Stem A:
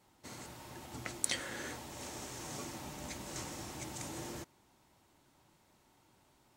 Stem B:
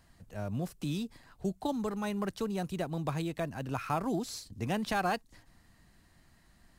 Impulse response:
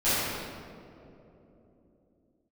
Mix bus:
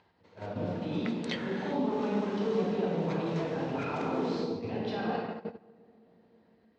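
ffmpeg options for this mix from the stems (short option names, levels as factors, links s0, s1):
-filter_complex "[0:a]volume=1.12[s0];[1:a]alimiter=level_in=2:limit=0.0631:level=0:latency=1:release=12,volume=0.501,volume=0.473,asplit=2[s1][s2];[s2]volume=0.531[s3];[2:a]atrim=start_sample=2205[s4];[s3][s4]afir=irnorm=-1:irlink=0[s5];[s0][s1][s5]amix=inputs=3:normalize=0,acompressor=mode=upward:threshold=0.0178:ratio=2.5,agate=range=0.126:threshold=0.0158:ratio=16:detection=peak,highpass=130,equalizer=f=130:t=q:w=4:g=-6,equalizer=f=460:t=q:w=4:g=10,equalizer=f=940:t=q:w=4:g=4,lowpass=f=4100:w=0.5412,lowpass=f=4100:w=1.3066"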